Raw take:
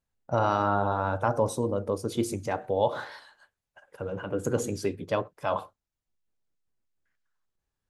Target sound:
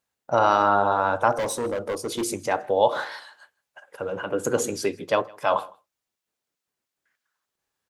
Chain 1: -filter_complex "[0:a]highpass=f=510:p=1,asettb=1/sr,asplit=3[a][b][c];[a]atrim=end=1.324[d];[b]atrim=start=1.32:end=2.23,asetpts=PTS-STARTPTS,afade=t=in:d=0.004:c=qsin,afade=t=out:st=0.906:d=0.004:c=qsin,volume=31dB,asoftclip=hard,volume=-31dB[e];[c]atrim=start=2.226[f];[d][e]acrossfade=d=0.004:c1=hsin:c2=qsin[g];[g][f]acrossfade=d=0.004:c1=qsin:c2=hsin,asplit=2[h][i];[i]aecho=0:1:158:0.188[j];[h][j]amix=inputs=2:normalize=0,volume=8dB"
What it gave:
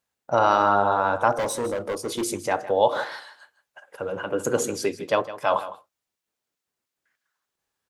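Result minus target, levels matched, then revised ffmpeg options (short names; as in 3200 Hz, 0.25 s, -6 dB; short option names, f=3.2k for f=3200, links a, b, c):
echo-to-direct +11 dB
-filter_complex "[0:a]highpass=f=510:p=1,asettb=1/sr,asplit=3[a][b][c];[a]atrim=end=1.324[d];[b]atrim=start=1.32:end=2.23,asetpts=PTS-STARTPTS,afade=t=in:d=0.004:c=qsin,afade=t=out:st=0.906:d=0.004:c=qsin,volume=31dB,asoftclip=hard,volume=-31dB[e];[c]atrim=start=2.226[f];[d][e]acrossfade=d=0.004:c1=hsin:c2=qsin[g];[g][f]acrossfade=d=0.004:c1=qsin:c2=hsin,asplit=2[h][i];[i]aecho=0:1:158:0.0531[j];[h][j]amix=inputs=2:normalize=0,volume=8dB"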